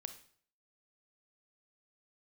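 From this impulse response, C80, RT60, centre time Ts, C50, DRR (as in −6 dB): 15.5 dB, 0.55 s, 8 ms, 11.5 dB, 8.5 dB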